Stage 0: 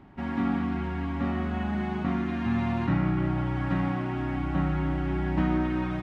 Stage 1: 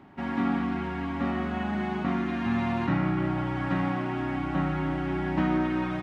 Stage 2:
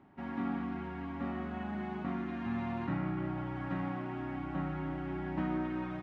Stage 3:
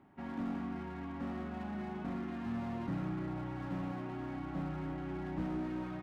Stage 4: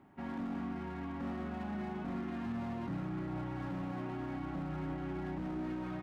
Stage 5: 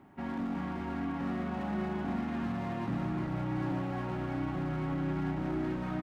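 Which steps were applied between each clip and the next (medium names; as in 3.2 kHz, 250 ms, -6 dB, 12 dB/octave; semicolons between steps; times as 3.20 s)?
high-pass 200 Hz 6 dB/octave; trim +2.5 dB
treble shelf 3.2 kHz -8.5 dB; trim -8.5 dB
slew-rate limiter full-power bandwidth 8.1 Hz; trim -2 dB
peak limiter -32 dBFS, peak gain reduction 6.5 dB; trim +1.5 dB
delay 381 ms -4 dB; trim +4 dB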